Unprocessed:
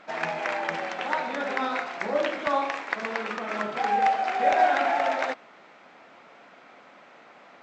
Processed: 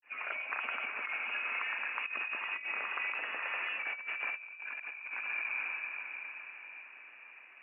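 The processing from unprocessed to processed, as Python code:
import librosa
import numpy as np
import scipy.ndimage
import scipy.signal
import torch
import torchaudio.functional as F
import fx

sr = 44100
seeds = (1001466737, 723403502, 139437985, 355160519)

y = fx.envelope_sharpen(x, sr, power=1.5)
y = fx.granulator(y, sr, seeds[0], grain_ms=217.0, per_s=9.6, spray_ms=100.0, spread_st=0)
y = fx.echo_diffused(y, sr, ms=472, feedback_pct=50, wet_db=-4.0)
y = fx.freq_invert(y, sr, carrier_hz=3100)
y = fx.brickwall_highpass(y, sr, low_hz=190.0)
y = fx.over_compress(y, sr, threshold_db=-28.0, ratio=-0.5)
y = F.gain(torch.from_numpy(y), -9.0).numpy()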